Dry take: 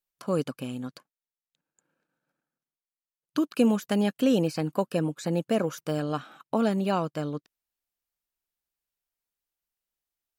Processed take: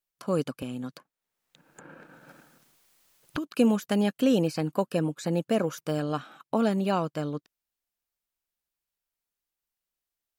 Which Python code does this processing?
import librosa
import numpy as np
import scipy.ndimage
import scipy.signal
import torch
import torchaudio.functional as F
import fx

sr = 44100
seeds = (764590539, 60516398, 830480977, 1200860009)

y = fx.band_squash(x, sr, depth_pct=100, at=(0.62, 3.46))